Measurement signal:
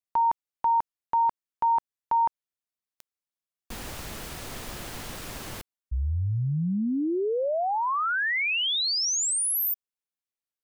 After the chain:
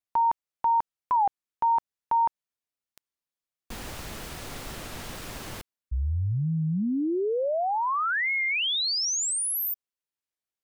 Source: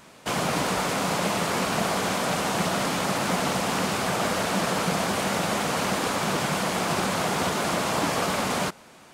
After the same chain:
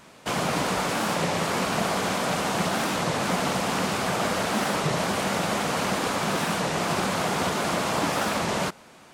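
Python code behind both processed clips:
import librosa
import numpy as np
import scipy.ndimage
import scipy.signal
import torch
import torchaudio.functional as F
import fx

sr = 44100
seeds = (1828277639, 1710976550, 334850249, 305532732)

y = fx.high_shelf(x, sr, hz=7900.0, db=-3.0)
y = fx.record_warp(y, sr, rpm=33.33, depth_cents=250.0)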